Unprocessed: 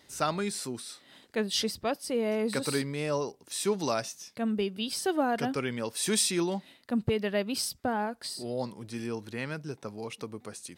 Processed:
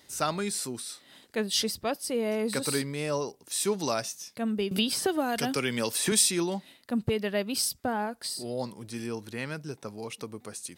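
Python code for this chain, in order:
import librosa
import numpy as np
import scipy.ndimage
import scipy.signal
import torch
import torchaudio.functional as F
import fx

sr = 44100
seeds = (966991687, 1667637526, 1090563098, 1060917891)

y = fx.high_shelf(x, sr, hz=6500.0, db=7.5)
y = fx.band_squash(y, sr, depth_pct=100, at=(4.71, 6.12))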